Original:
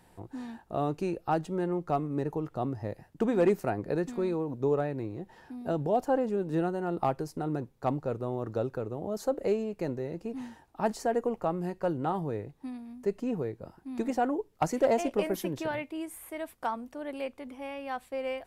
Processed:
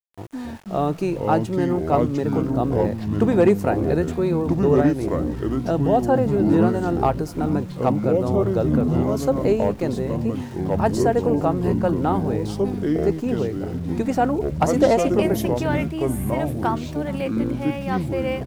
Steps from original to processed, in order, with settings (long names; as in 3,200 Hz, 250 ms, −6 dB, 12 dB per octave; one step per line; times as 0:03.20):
single-tap delay 423 ms −22 dB
delay with pitch and tempo change per echo 215 ms, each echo −5 semitones, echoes 3
centre clipping without the shift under −49.5 dBFS
level +8 dB